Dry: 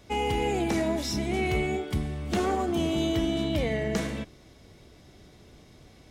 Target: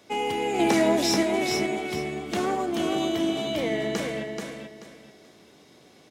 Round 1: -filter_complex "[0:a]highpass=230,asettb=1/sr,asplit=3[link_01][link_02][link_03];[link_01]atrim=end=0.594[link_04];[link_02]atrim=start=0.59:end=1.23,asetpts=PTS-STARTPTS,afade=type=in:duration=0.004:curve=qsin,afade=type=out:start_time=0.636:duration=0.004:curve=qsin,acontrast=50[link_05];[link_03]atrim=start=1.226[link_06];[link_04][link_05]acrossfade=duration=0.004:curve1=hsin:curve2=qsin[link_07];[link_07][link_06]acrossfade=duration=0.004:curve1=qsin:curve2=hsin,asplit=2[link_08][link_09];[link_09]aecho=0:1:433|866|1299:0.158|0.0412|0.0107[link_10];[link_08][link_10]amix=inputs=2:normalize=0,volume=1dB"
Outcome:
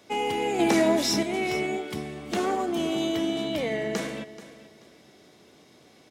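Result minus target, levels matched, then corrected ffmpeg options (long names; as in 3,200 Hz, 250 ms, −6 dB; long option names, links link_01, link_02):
echo-to-direct −11 dB
-filter_complex "[0:a]highpass=230,asettb=1/sr,asplit=3[link_01][link_02][link_03];[link_01]atrim=end=0.594[link_04];[link_02]atrim=start=0.59:end=1.23,asetpts=PTS-STARTPTS,afade=type=in:duration=0.004:curve=qsin,afade=type=out:start_time=0.636:duration=0.004:curve=qsin,acontrast=50[link_05];[link_03]atrim=start=1.226[link_06];[link_04][link_05]acrossfade=duration=0.004:curve1=hsin:curve2=qsin[link_07];[link_07][link_06]acrossfade=duration=0.004:curve1=qsin:curve2=hsin,asplit=2[link_08][link_09];[link_09]aecho=0:1:433|866|1299:0.562|0.146|0.038[link_10];[link_08][link_10]amix=inputs=2:normalize=0,volume=1dB"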